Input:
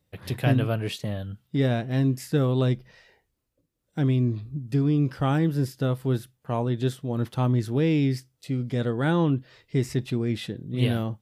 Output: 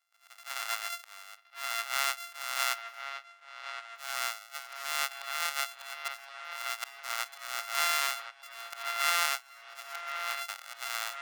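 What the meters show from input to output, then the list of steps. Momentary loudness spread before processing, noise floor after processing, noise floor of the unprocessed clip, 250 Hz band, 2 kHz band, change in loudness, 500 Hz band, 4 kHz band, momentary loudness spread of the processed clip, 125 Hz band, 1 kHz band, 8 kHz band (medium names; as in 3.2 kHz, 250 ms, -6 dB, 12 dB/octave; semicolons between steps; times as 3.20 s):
9 LU, -59 dBFS, -76 dBFS, under -40 dB, +4.5 dB, -7.5 dB, -18.0 dB, +4.5 dB, 15 LU, under -40 dB, +1.0 dB, no reading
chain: sorted samples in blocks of 64 samples; slow attack 300 ms; high-pass 1.1 kHz 24 dB/octave; on a send: feedback echo behind a low-pass 1068 ms, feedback 66%, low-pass 3.6 kHz, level -9 dB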